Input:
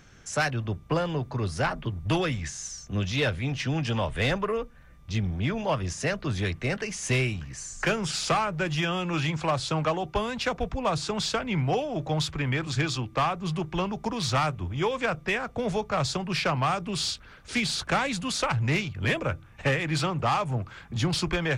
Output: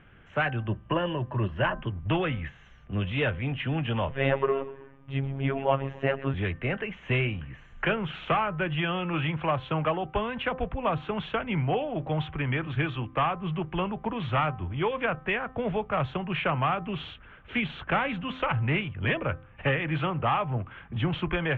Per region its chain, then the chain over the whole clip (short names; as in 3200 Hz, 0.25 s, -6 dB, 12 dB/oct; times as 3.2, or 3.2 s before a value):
0.67–1.81 ripple EQ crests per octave 1.3, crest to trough 9 dB + upward compressor, threshold -43 dBFS
4.1–6.34 bell 470 Hz +6.5 dB 2.4 oct + frequency-shifting echo 0.126 s, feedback 46%, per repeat -39 Hz, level -17.5 dB + robotiser 136 Hz
whole clip: elliptic low-pass 3100 Hz, stop band 40 dB; de-hum 258.4 Hz, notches 7